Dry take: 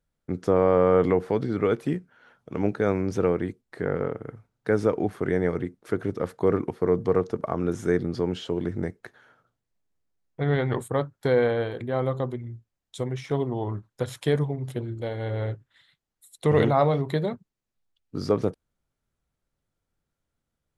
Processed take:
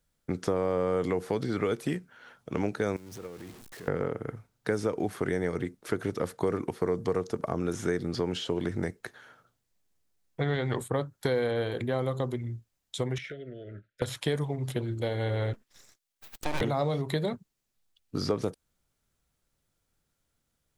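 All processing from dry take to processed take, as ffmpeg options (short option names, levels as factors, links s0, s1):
-filter_complex "[0:a]asettb=1/sr,asplit=3[s0][s1][s2];[s0]atrim=end=2.964[s3];[s1]atrim=start=2.96:end=3.88,asetpts=PTS-STARTPTS,afade=t=in:d=0.004:c=qsin,afade=t=out:st=0.916:d=0.004:c=qsin,aeval=exprs='val(0)+0.5*0.0316*sgn(val(0))':c=same,acompressor=threshold=0.0631:ratio=4:attack=3.2:release=140:knee=1:detection=peak,agate=range=0.141:threshold=0.0562:ratio=16:release=100:detection=peak[s4];[s2]atrim=start=3.876[s5];[s3][s4]acrossfade=d=0.004:c1=hsin:c2=qsin[s6];[s6][s5]acrossfade=d=0.004:c1=qsin:c2=hsin,asettb=1/sr,asplit=3[s7][s8][s9];[s7]atrim=end=13.184[s10];[s8]atrim=start=13.18:end=14.02,asetpts=PTS-STARTPTS,afade=t=in:d=0.004:c=qsin,afade=t=out:st=0.836:d=0.004:c=qsin,acrossover=split=600 3000:gain=0.251 1 0.0891[s11][s12][s13];[s11][s12][s13]amix=inputs=3:normalize=0,acompressor=threshold=0.0126:ratio=5:attack=3.2:release=140:knee=1:detection=peak,asuperstop=centerf=940:order=12:qfactor=1.3[s14];[s9]atrim=start=14.016[s15];[s10][s14]acrossfade=d=0.004:c1=hsin:c2=qsin[s16];[s16][s15]acrossfade=d=0.004:c1=qsin:c2=hsin,asettb=1/sr,asplit=3[s17][s18][s19];[s17]atrim=end=15.534[s20];[s18]atrim=start=15.53:end=16.61,asetpts=PTS-STARTPTS,afade=t=in:d=0.004:c=qsin,afade=t=out:st=1.076:d=0.004:c=qsin,lowshelf=f=470:g=-11,aeval=exprs='abs(val(0))':c=same[s21];[s19]atrim=start=16.606[s22];[s20][s21]acrossfade=d=0.004:c1=hsin:c2=qsin[s23];[s23][s22]acrossfade=d=0.004:c1=qsin:c2=hsin,highshelf=f=2700:g=8,acrossover=split=570|4700[s24][s25][s26];[s24]acompressor=threshold=0.0316:ratio=4[s27];[s25]acompressor=threshold=0.0141:ratio=4[s28];[s26]acompressor=threshold=0.00398:ratio=4[s29];[s27][s28][s29]amix=inputs=3:normalize=0,volume=1.26"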